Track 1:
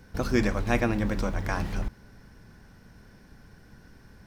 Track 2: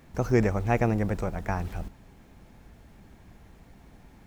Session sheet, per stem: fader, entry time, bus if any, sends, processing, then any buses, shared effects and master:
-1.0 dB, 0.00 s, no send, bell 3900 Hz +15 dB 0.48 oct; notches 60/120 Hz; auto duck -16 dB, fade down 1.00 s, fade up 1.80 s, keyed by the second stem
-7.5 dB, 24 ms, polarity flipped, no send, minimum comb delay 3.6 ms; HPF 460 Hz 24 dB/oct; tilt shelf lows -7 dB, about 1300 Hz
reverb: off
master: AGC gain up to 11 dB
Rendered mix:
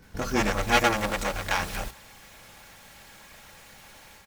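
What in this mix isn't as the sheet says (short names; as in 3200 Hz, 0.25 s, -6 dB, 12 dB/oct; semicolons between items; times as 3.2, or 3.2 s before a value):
stem 1: missing bell 3900 Hz +15 dB 0.48 oct; stem 2 -7.5 dB -> -0.5 dB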